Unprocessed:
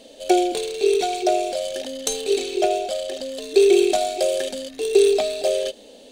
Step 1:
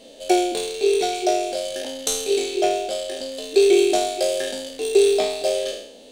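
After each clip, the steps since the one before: spectral trails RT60 0.70 s; gain -1.5 dB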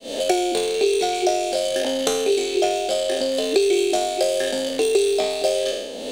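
opening faded in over 0.58 s; three-band squash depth 100%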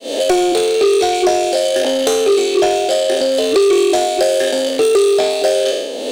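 resonant low shelf 210 Hz -13 dB, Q 1.5; soft clip -14 dBFS, distortion -15 dB; gain +7 dB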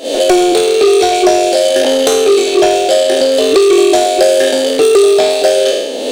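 pre-echo 0.152 s -14.5 dB; gain +4.5 dB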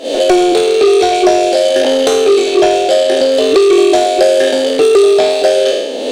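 high shelf 8500 Hz -11.5 dB

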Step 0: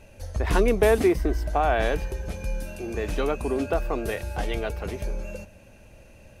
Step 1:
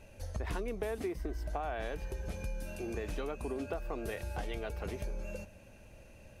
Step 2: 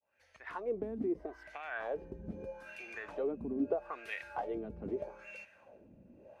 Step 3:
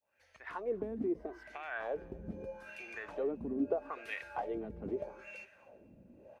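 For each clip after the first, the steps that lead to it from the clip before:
compressor 6:1, threshold -29 dBFS, peak gain reduction 13.5 dB; gain -5 dB
opening faded in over 0.82 s; wah 0.79 Hz 210–2300 Hz, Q 2.9; gain +8.5 dB
feedback echo 0.25 s, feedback 31%, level -24 dB

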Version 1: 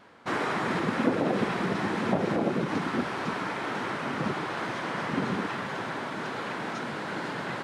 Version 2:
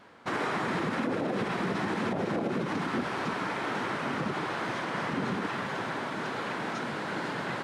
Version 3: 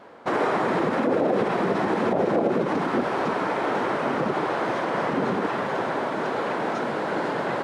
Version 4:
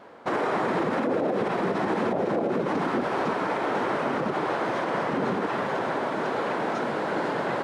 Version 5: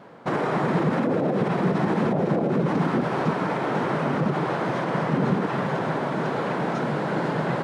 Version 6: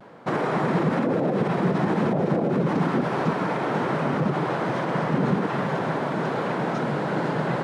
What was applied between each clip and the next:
limiter -21.5 dBFS, peak gain reduction 10 dB
bell 550 Hz +11.5 dB 2.2 oct
limiter -16 dBFS, peak gain reduction 4.5 dB; gain -1 dB
bell 150 Hz +14 dB 0.87 oct
vibrato 0.39 Hz 20 cents

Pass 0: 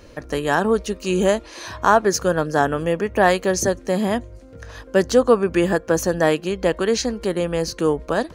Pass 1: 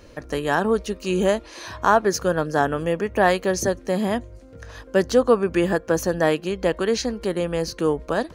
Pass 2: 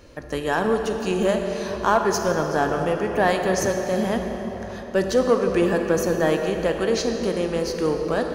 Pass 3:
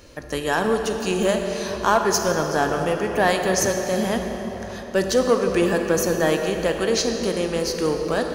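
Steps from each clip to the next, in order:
dynamic EQ 7500 Hz, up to -4 dB, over -44 dBFS, Q 2; gain -2 dB
in parallel at -6.5 dB: overloaded stage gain 17.5 dB; on the sum: reverb RT60 4.4 s, pre-delay 27 ms, DRR 4 dB; gain -4.5 dB
high shelf 3000 Hz +7.5 dB

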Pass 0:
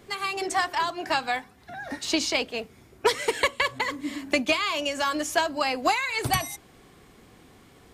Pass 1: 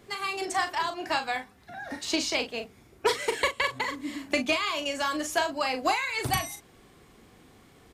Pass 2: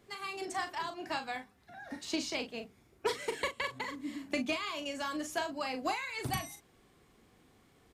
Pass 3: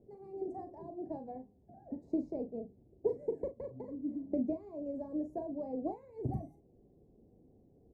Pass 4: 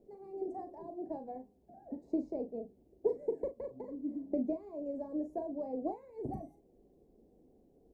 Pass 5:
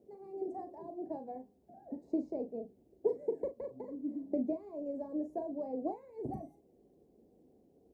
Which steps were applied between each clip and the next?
doubler 39 ms -8 dB; gain -3 dB
dynamic EQ 200 Hz, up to +7 dB, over -47 dBFS, Q 0.99; gain -9 dB
inverse Chebyshev low-pass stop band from 1200 Hz, stop band 40 dB; gain +2.5 dB
bell 110 Hz -13.5 dB 1.3 oct; gain +2 dB
HPF 76 Hz

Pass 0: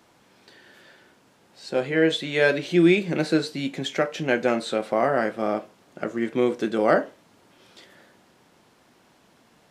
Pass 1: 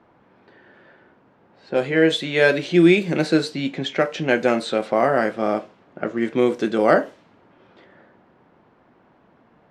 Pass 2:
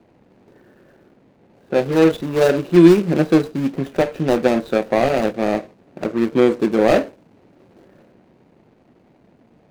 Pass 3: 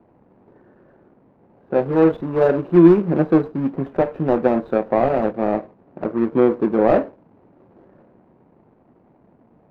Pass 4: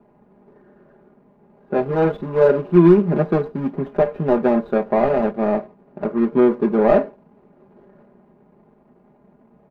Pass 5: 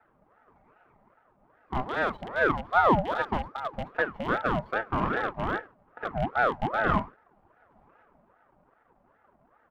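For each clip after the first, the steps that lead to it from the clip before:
low-pass opened by the level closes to 1500 Hz, open at -18.5 dBFS; gain +3.5 dB
median filter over 41 samples; gain +5 dB
EQ curve 570 Hz 0 dB, 1000 Hz +3 dB, 7700 Hz -26 dB; gain -1 dB
comb 4.9 ms, depth 70%; gain -1 dB
rattling part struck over -26 dBFS, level -22 dBFS; ring modulator with a swept carrier 740 Hz, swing 50%, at 2.5 Hz; gain -7.5 dB

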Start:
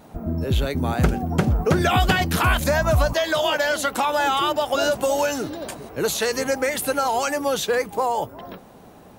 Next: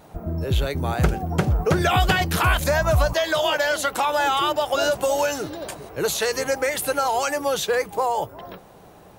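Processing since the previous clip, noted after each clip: bell 240 Hz -10 dB 0.38 oct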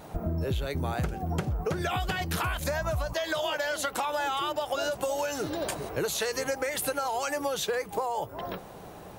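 compressor 12:1, threshold -29 dBFS, peak gain reduction 16 dB; gain +2.5 dB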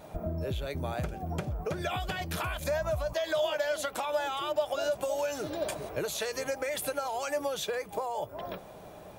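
small resonant body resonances 610/2400/3400 Hz, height 9 dB; gain -4.5 dB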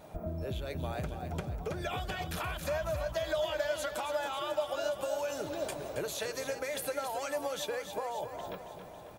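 feedback echo 0.273 s, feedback 56%, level -9 dB; gain -3.5 dB

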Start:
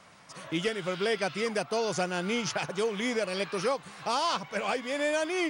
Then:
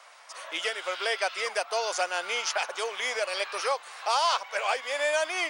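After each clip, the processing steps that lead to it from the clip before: HPF 580 Hz 24 dB/oct; gain +4 dB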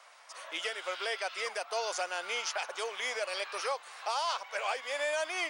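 limiter -18.5 dBFS, peak gain reduction 5 dB; gain -4.5 dB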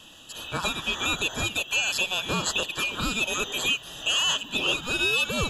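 band-swap scrambler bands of 2000 Hz; gain +8 dB

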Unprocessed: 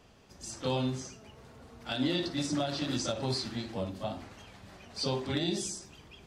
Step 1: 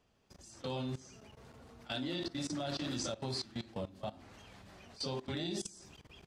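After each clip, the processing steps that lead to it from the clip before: level quantiser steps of 18 dB; gain -1.5 dB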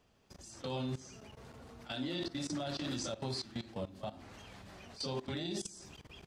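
limiter -32.5 dBFS, peak gain reduction 7.5 dB; gain +3 dB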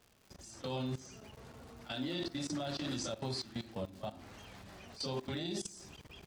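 crackle 180/s -50 dBFS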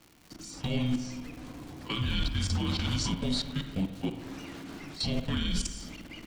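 spring tank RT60 1.6 s, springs 45/54 ms, chirp 60 ms, DRR 7.5 dB; frequency shift -380 Hz; gain +8 dB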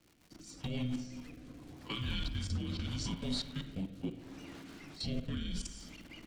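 rotary speaker horn 7.5 Hz, later 0.75 Hz, at 0.57; gain -5.5 dB

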